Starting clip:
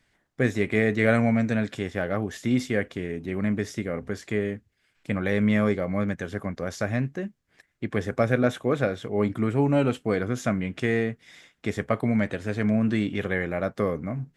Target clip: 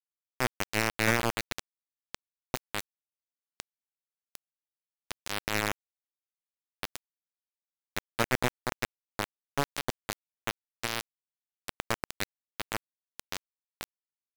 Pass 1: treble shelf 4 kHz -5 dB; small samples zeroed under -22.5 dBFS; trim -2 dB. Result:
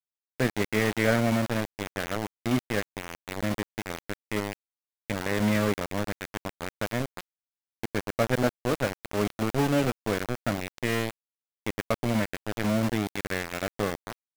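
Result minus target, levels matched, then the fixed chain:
small samples zeroed: distortion -13 dB
treble shelf 4 kHz -5 dB; small samples zeroed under -13.5 dBFS; trim -2 dB

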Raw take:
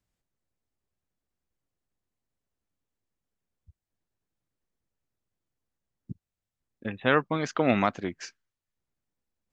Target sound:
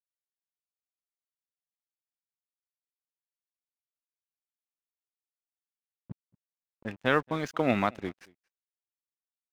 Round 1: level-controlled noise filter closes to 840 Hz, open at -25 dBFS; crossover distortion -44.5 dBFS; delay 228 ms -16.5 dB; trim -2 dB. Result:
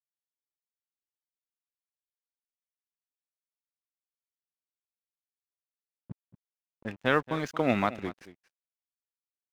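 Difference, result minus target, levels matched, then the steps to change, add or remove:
echo-to-direct +10.5 dB
change: delay 228 ms -27 dB

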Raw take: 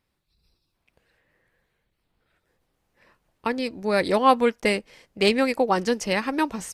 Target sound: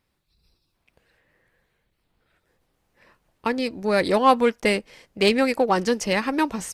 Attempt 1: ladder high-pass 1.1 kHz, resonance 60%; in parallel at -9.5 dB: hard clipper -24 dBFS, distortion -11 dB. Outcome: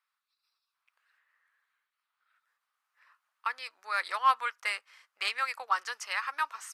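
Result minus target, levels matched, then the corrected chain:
1 kHz band +3.5 dB
in parallel at -9.5 dB: hard clipper -24 dBFS, distortion -5 dB

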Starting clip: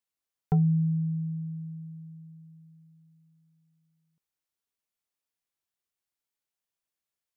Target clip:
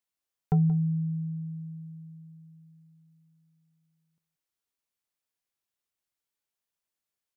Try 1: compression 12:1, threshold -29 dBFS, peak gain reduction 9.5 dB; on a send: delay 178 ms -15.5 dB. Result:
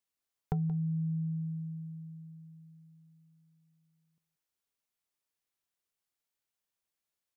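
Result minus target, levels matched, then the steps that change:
compression: peak gain reduction +9.5 dB
remove: compression 12:1, threshold -29 dBFS, peak gain reduction 9.5 dB

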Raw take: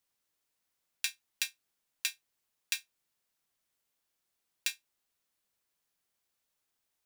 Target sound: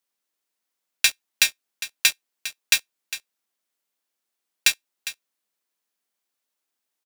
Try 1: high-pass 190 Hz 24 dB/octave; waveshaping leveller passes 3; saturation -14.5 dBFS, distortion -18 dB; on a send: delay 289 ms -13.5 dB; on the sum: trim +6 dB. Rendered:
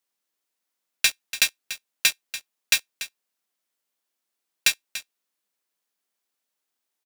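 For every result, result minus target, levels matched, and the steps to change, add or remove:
saturation: distortion +16 dB; echo 116 ms early
change: saturation -5 dBFS, distortion -34 dB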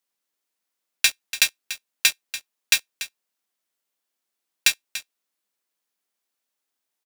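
echo 116 ms early
change: delay 405 ms -13.5 dB

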